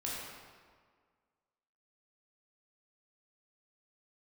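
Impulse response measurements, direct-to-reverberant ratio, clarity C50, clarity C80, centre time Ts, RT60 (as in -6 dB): -6.0 dB, -2.0 dB, 0.0 dB, 0.11 s, 1.8 s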